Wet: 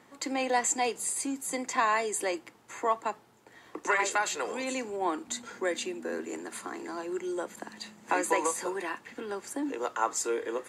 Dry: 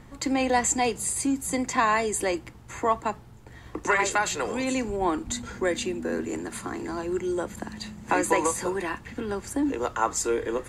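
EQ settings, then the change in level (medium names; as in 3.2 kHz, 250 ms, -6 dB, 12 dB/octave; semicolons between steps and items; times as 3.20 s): high-pass 330 Hz 12 dB/octave; -3.5 dB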